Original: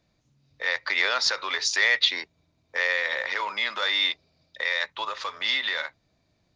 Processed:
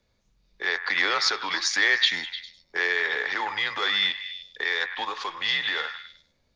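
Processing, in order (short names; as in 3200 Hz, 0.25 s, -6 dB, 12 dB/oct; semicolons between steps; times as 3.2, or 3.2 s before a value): delay with a stepping band-pass 0.101 s, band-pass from 1400 Hz, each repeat 0.7 oct, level -8 dB; frequency shift -95 Hz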